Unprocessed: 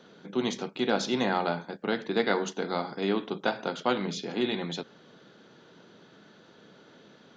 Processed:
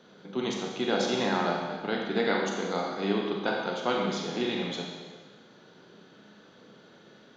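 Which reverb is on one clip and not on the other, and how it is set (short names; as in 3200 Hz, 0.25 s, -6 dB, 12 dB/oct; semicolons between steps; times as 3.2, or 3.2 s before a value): Schroeder reverb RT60 1.4 s, combs from 30 ms, DRR 0 dB; gain -2.5 dB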